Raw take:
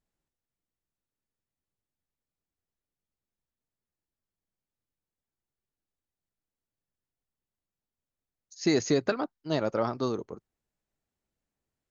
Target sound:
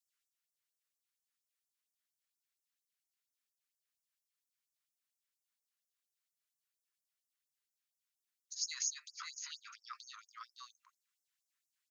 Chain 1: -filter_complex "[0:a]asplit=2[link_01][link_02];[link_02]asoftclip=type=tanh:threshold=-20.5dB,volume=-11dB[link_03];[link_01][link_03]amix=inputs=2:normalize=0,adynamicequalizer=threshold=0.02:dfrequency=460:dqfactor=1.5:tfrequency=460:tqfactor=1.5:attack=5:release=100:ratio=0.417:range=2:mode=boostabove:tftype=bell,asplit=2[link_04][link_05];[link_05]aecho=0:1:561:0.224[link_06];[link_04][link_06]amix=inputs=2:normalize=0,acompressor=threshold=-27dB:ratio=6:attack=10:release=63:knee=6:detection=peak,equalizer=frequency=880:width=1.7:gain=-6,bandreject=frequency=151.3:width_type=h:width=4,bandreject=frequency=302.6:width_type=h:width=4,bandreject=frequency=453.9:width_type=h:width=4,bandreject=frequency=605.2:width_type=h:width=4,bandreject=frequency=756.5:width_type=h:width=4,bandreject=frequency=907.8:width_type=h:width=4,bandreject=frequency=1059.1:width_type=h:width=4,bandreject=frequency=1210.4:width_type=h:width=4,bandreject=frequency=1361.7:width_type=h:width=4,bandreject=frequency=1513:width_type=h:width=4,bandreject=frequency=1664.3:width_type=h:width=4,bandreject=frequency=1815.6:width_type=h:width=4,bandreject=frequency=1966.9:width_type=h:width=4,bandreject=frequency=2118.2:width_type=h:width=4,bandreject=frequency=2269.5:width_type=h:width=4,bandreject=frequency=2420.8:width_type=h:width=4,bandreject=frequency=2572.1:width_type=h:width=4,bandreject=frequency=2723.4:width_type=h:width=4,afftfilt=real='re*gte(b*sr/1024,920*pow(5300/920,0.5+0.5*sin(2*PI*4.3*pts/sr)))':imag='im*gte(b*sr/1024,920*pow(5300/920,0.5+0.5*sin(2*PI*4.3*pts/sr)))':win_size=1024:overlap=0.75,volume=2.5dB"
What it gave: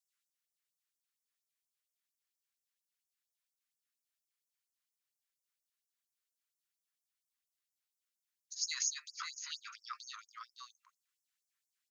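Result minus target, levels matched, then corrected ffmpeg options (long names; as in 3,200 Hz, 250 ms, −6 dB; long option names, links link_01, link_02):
downward compressor: peak gain reduction −5 dB
-filter_complex "[0:a]asplit=2[link_01][link_02];[link_02]asoftclip=type=tanh:threshold=-20.5dB,volume=-11dB[link_03];[link_01][link_03]amix=inputs=2:normalize=0,adynamicequalizer=threshold=0.02:dfrequency=460:dqfactor=1.5:tfrequency=460:tqfactor=1.5:attack=5:release=100:ratio=0.417:range=2:mode=boostabove:tftype=bell,asplit=2[link_04][link_05];[link_05]aecho=0:1:561:0.224[link_06];[link_04][link_06]amix=inputs=2:normalize=0,acompressor=threshold=-33dB:ratio=6:attack=10:release=63:knee=6:detection=peak,equalizer=frequency=880:width=1.7:gain=-6,bandreject=frequency=151.3:width_type=h:width=4,bandreject=frequency=302.6:width_type=h:width=4,bandreject=frequency=453.9:width_type=h:width=4,bandreject=frequency=605.2:width_type=h:width=4,bandreject=frequency=756.5:width_type=h:width=4,bandreject=frequency=907.8:width_type=h:width=4,bandreject=frequency=1059.1:width_type=h:width=4,bandreject=frequency=1210.4:width_type=h:width=4,bandreject=frequency=1361.7:width_type=h:width=4,bandreject=frequency=1513:width_type=h:width=4,bandreject=frequency=1664.3:width_type=h:width=4,bandreject=frequency=1815.6:width_type=h:width=4,bandreject=frequency=1966.9:width_type=h:width=4,bandreject=frequency=2118.2:width_type=h:width=4,bandreject=frequency=2269.5:width_type=h:width=4,bandreject=frequency=2420.8:width_type=h:width=4,bandreject=frequency=2572.1:width_type=h:width=4,bandreject=frequency=2723.4:width_type=h:width=4,afftfilt=real='re*gte(b*sr/1024,920*pow(5300/920,0.5+0.5*sin(2*PI*4.3*pts/sr)))':imag='im*gte(b*sr/1024,920*pow(5300/920,0.5+0.5*sin(2*PI*4.3*pts/sr)))':win_size=1024:overlap=0.75,volume=2.5dB"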